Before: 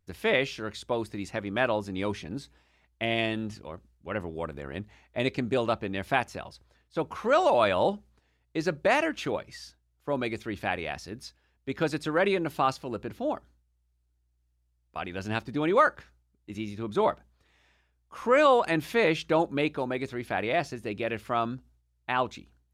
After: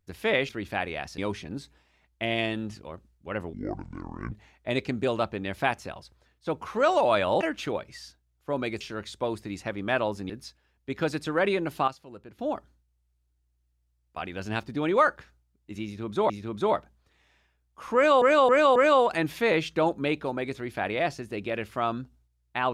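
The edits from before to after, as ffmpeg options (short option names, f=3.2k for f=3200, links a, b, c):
-filter_complex "[0:a]asplit=14[a][b][c][d][e][f][g][h][i][j][k][l][m][n];[a]atrim=end=0.492[o];[b]atrim=start=10.398:end=11.092[p];[c]atrim=start=1.978:end=4.334[q];[d]atrim=start=4.33:end=4.81,asetpts=PTS-STARTPTS,asetrate=26901,aresample=44100[r];[e]atrim=start=4.806:end=7.902[s];[f]atrim=start=8.998:end=10.402[t];[g]atrim=start=0.488:end=1.982[u];[h]atrim=start=11.088:end=12.672[v];[i]atrim=start=12.668:end=13.182,asetpts=PTS-STARTPTS,volume=-11dB[w];[j]atrim=start=13.178:end=17.092[x];[k]atrim=start=16.638:end=18.562[y];[l]atrim=start=18.288:end=18.562[z];[m]atrim=start=18.288:end=18.562[aa];[n]atrim=start=18.288[ab];[o][p]acrossfade=d=0.004:c1=hsin:c2=hsin[ac];[ac][q]acrossfade=d=0.004:c1=hsin:c2=hsin[ad];[ad][r]acrossfade=d=0.004:c1=hsin:c2=hsin[ae];[ae][s]acrossfade=d=0.004:c1=hsin:c2=hsin[af];[af][t]acrossfade=d=0.004:c1=hsin:c2=hsin[ag];[ag][u]acrossfade=d=0.004:c1=hsin:c2=hsin[ah];[ah][v]acrossfade=d=0.004:c1=hsin:c2=hsin[ai];[ai][w]acrossfade=d=0.004:c1=hsin:c2=hsin[aj];[aj][x]acrossfade=d=0.004:c1=hsin:c2=hsin[ak];[ak][y]acrossfade=d=0.004:c1=hsin:c2=hsin[al];[al][z]acrossfade=d=0.004:c1=hsin:c2=hsin[am];[am][aa]acrossfade=d=0.004:c1=hsin:c2=hsin[an];[an][ab]acrossfade=d=0.004:c1=hsin:c2=hsin"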